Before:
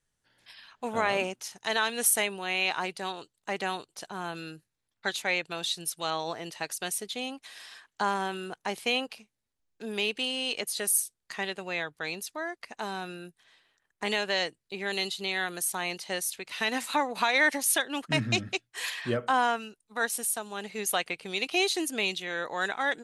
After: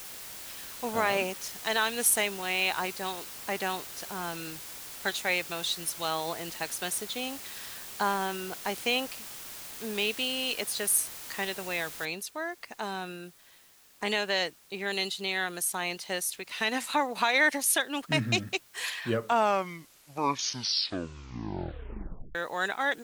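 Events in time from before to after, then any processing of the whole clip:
2.92–3.54 LPF 8900 Hz
12.05 noise floor step -43 dB -59 dB
18.99 tape stop 3.36 s

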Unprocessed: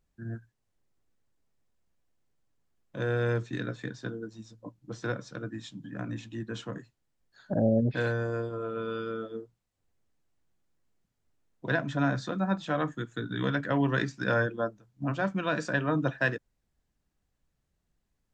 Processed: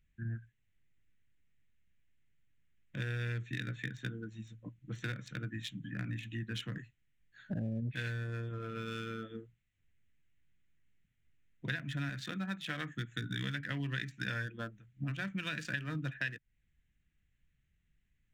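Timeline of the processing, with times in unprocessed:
12.09–12.96 low shelf 130 Hz -11.5 dB
whole clip: Wiener smoothing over 9 samples; EQ curve 140 Hz 0 dB, 590 Hz -16 dB, 1000 Hz -16 dB, 2000 Hz +7 dB, 2900 Hz +7 dB, 4600 Hz +4 dB; compressor 5:1, threshold -38 dBFS; gain +3 dB

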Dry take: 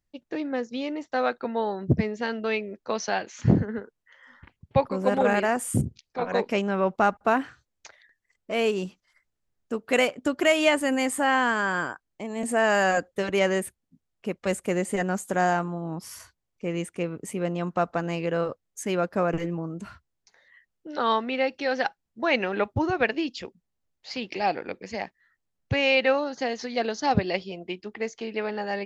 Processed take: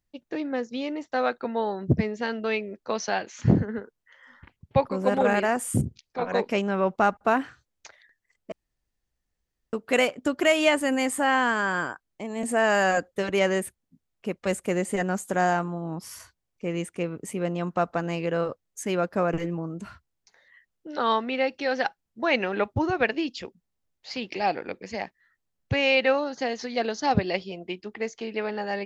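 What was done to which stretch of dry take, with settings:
8.52–9.73 room tone

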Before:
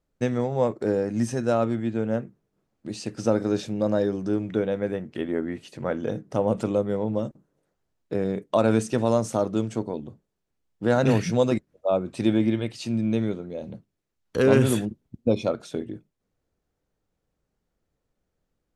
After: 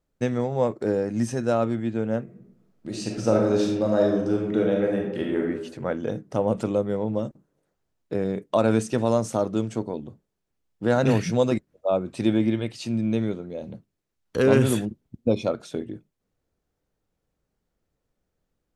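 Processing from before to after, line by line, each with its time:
2.23–5.43 reverb throw, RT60 0.89 s, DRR -0.5 dB

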